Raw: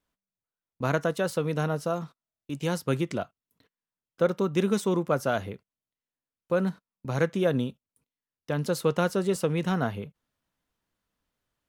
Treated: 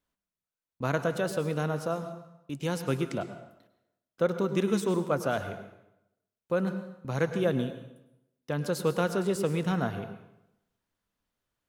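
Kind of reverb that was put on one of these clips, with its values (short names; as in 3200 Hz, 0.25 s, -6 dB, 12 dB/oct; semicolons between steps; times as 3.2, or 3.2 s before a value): plate-style reverb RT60 0.85 s, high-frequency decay 0.8×, pre-delay 90 ms, DRR 9.5 dB; gain -2.5 dB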